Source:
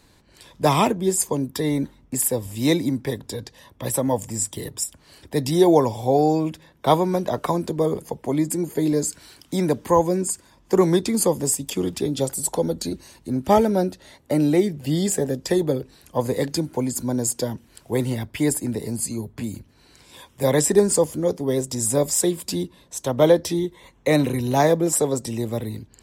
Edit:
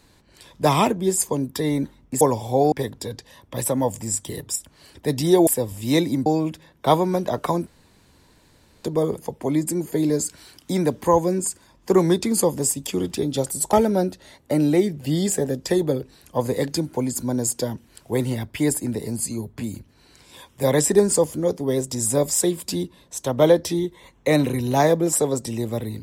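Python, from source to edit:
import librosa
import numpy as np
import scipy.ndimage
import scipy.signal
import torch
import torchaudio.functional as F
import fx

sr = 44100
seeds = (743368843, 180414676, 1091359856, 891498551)

y = fx.edit(x, sr, fx.swap(start_s=2.21, length_s=0.79, other_s=5.75, other_length_s=0.51),
    fx.insert_room_tone(at_s=7.67, length_s=1.17),
    fx.cut(start_s=12.56, length_s=0.97), tone=tone)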